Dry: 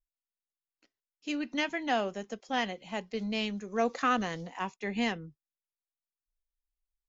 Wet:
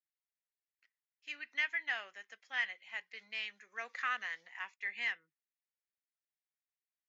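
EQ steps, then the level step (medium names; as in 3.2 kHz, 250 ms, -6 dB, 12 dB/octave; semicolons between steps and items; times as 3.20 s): band-pass filter 1.9 kHz, Q 3.5; tilt EQ +3 dB/octave; 0.0 dB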